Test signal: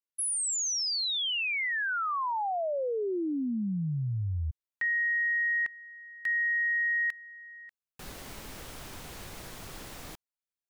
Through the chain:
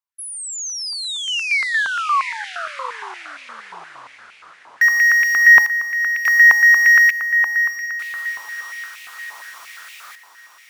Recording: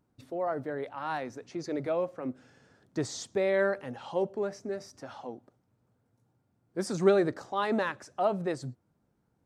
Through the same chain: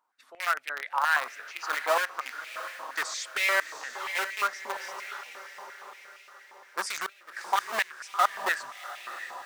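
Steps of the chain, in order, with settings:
automatic gain control gain up to 4 dB
in parallel at −6 dB: bit reduction 4 bits
on the sum: gate with flip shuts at −10 dBFS, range −31 dB
on a send: feedback delay with all-pass diffusion 684 ms, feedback 49%, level −10 dB
on the sum: high-pass on a step sequencer 8.6 Hz 980–2,400 Hz
level −1 dB

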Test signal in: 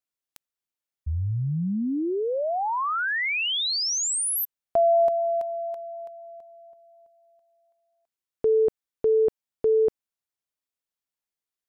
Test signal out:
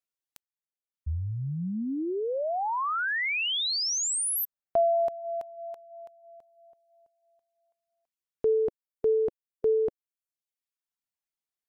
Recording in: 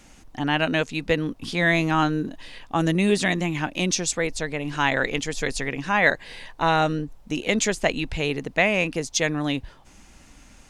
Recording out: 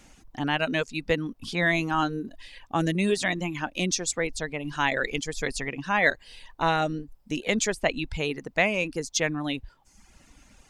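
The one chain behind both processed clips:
reverb reduction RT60 0.93 s
level −2.5 dB

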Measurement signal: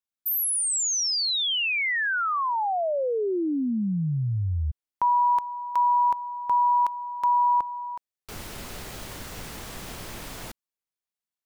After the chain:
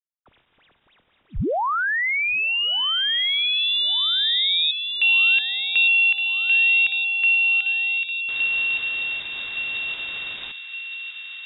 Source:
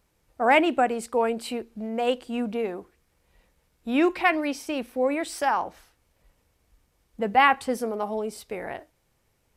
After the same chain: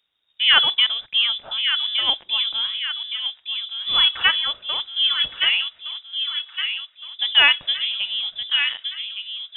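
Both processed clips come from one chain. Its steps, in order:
mu-law and A-law mismatch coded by A
voice inversion scrambler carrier 3,700 Hz
delay with a high-pass on its return 1,166 ms, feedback 53%, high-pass 1,600 Hz, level −6 dB
level +4 dB

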